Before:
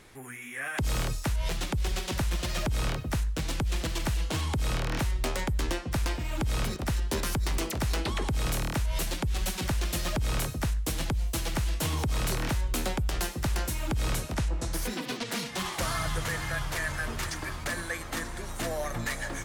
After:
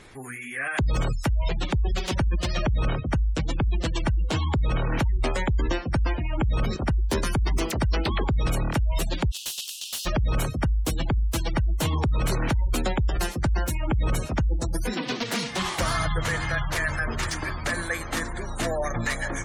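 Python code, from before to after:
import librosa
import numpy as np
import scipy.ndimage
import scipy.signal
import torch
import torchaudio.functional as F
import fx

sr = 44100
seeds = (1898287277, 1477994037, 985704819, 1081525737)

y = fx.steep_highpass(x, sr, hz=2700.0, slope=96, at=(9.3, 10.05), fade=0.02)
y = fx.spec_gate(y, sr, threshold_db=-25, keep='strong')
y = fx.slew_limit(y, sr, full_power_hz=160.0)
y = F.gain(torch.from_numpy(y), 5.5).numpy()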